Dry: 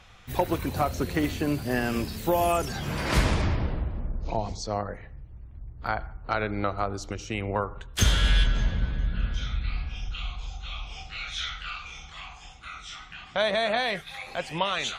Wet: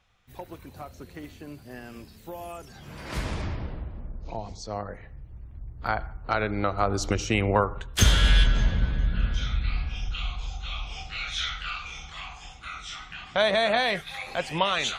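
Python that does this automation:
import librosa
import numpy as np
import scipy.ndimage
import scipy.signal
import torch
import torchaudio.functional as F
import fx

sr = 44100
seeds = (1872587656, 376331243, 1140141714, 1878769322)

y = fx.gain(x, sr, db=fx.line((2.67, -15.0), (3.39, -6.0), (4.47, -6.0), (5.35, 1.5), (6.72, 1.5), (7.06, 9.0), (8.06, 2.5)))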